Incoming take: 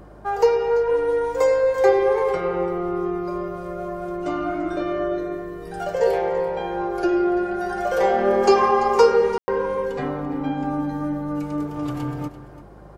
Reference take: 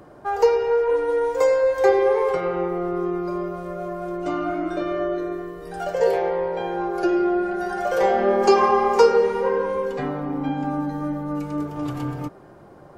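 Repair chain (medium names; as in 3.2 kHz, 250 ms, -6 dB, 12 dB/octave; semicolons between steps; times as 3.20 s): de-hum 51.4 Hz, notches 4; room tone fill 9.38–9.48 s; inverse comb 339 ms -15 dB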